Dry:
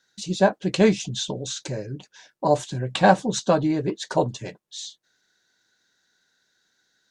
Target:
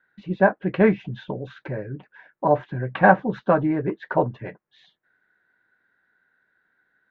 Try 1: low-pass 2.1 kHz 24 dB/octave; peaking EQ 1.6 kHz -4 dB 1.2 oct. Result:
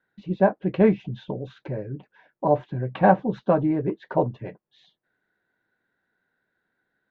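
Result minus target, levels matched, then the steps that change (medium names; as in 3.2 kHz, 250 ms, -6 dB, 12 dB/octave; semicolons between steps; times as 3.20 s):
2 kHz band -7.5 dB
change: peaking EQ 1.6 kHz +5.5 dB 1.2 oct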